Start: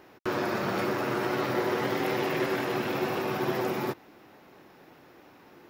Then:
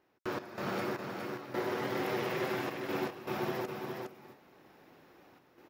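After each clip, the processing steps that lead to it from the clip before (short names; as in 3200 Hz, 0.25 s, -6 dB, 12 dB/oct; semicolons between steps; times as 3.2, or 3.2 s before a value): step gate ".x.xx...xxxxxx" 78 bpm -12 dB; on a send: echo 0.411 s -5 dB; on the sum: gain -6.5 dB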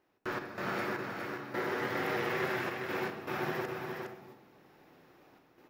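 dynamic EQ 1700 Hz, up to +7 dB, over -55 dBFS, Q 1.4; on a send at -7 dB: reverb RT60 0.70 s, pre-delay 32 ms; on the sum: gain -2 dB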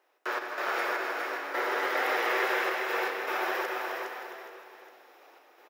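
HPF 450 Hz 24 dB/oct; notch 4400 Hz, Q 26; tapped delay 0.164/0.261/0.429/0.571/0.823 s -9.5/-10/-13/-16.5/-16 dB; gain +6 dB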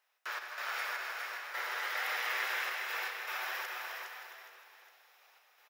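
passive tone stack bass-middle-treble 10-0-10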